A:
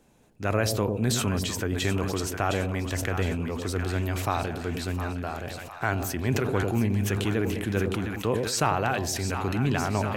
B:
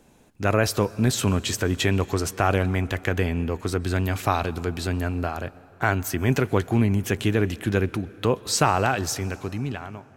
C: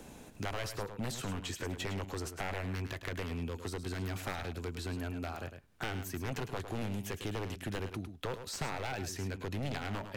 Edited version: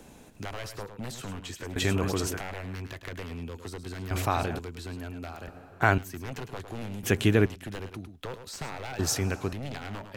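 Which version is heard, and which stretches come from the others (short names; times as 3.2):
C
1.76–2.39 from A
4.11–4.59 from A
5.48–5.98 from B
7.03–7.46 from B
8.99–9.53 from B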